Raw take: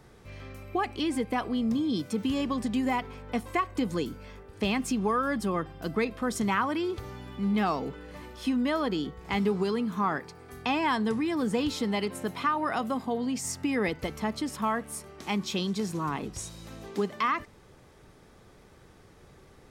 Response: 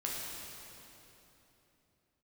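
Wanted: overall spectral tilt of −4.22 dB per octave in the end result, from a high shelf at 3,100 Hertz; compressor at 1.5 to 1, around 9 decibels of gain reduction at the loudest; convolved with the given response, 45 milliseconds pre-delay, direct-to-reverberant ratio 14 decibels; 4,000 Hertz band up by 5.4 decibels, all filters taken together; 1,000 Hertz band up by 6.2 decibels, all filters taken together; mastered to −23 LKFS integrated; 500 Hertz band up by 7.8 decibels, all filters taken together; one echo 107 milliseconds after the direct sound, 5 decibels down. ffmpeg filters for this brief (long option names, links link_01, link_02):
-filter_complex "[0:a]equalizer=frequency=500:width_type=o:gain=8.5,equalizer=frequency=1000:width_type=o:gain=4.5,highshelf=frequency=3100:gain=5,equalizer=frequency=4000:width_type=o:gain=3,acompressor=threshold=-42dB:ratio=1.5,aecho=1:1:107:0.562,asplit=2[link_01][link_02];[1:a]atrim=start_sample=2205,adelay=45[link_03];[link_02][link_03]afir=irnorm=-1:irlink=0,volume=-17.5dB[link_04];[link_01][link_04]amix=inputs=2:normalize=0,volume=9dB"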